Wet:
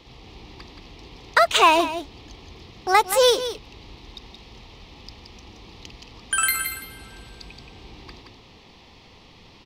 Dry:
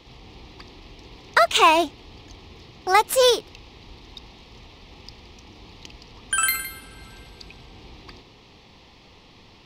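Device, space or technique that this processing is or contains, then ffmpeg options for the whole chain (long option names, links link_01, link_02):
ducked delay: -filter_complex "[0:a]asplit=3[link_01][link_02][link_03];[link_02]adelay=174,volume=-5.5dB[link_04];[link_03]apad=whole_len=433433[link_05];[link_04][link_05]sidechaincompress=threshold=-23dB:ratio=8:attack=46:release=467[link_06];[link_01][link_06]amix=inputs=2:normalize=0"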